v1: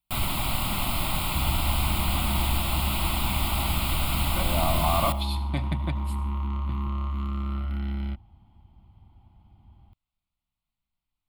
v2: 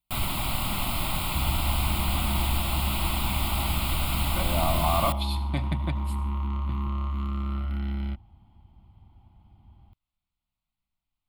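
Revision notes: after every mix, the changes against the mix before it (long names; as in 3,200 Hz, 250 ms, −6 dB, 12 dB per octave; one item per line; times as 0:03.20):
first sound: send −10.5 dB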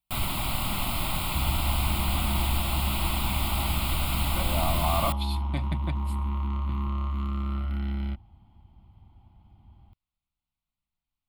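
reverb: off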